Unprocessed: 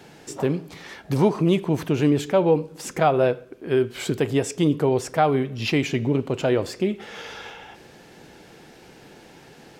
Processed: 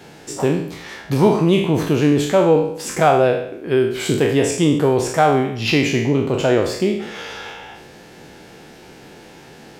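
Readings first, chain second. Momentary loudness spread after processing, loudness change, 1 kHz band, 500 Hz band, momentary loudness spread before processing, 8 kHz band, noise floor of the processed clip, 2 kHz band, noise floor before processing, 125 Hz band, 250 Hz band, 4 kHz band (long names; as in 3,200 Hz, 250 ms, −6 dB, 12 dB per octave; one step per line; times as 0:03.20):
16 LU, +5.5 dB, +6.0 dB, +5.5 dB, 17 LU, +7.5 dB, −43 dBFS, +7.0 dB, −49 dBFS, +4.5 dB, +5.0 dB, +7.0 dB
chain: peak hold with a decay on every bin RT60 0.68 s
level +3.5 dB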